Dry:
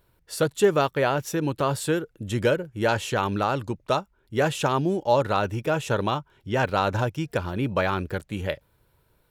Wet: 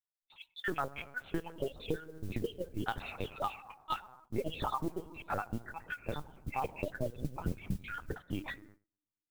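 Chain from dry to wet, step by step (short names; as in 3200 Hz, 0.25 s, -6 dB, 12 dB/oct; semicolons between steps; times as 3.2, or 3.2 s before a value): random spectral dropouts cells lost 73%; 5.21–5.94 air absorption 470 m; FDN reverb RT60 1.6 s, low-frequency decay 1.25×, high-frequency decay 0.3×, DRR 17.5 dB; flange 1.7 Hz, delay 1.3 ms, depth 3 ms, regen +82%; gate -59 dBFS, range -31 dB; 3.36–3.97 HPF 630 Hz 24 dB/oct; 7.17–8.19 tilt -4 dB/oct; LPC vocoder at 8 kHz pitch kept; compressor 6:1, threshold -33 dBFS, peak gain reduction 11.5 dB; modulation noise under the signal 24 dB; gain +2.5 dB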